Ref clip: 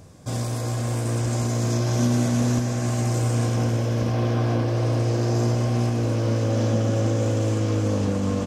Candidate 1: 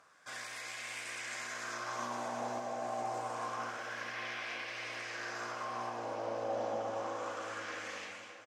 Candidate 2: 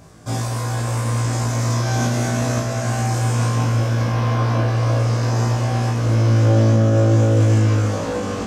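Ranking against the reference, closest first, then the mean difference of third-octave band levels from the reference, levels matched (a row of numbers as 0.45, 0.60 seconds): 2, 1; 2.5, 9.5 decibels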